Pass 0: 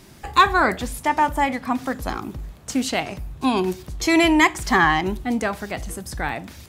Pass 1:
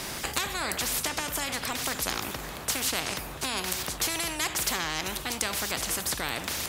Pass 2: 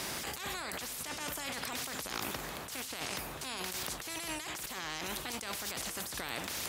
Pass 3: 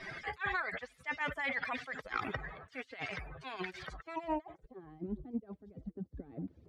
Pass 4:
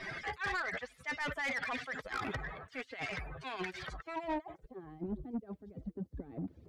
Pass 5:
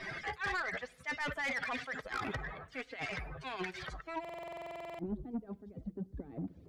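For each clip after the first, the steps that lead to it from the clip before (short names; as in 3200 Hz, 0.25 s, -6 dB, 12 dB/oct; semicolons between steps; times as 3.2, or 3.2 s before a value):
compressor 2.5:1, threshold -21 dBFS, peak gain reduction 8 dB; spectral compressor 4:1
low shelf 80 Hz -8.5 dB; negative-ratio compressor -34 dBFS, ratio -1; gain -5.5 dB
per-bin expansion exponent 3; low-pass sweep 1900 Hz -> 280 Hz, 3.82–4.96; gain +9 dB
soft clip -33.5 dBFS, distortion -11 dB; gain +3 dB
on a send at -21.5 dB: reverb RT60 0.85 s, pre-delay 6 ms; on the sum: stuck buffer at 4.2, samples 2048, times 16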